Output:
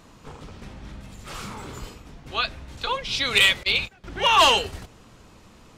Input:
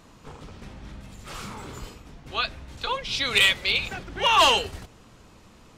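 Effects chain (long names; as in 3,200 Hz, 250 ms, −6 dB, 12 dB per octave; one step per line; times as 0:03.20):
0:03.63–0:04.04: noise gate −28 dBFS, range −21 dB
level +1.5 dB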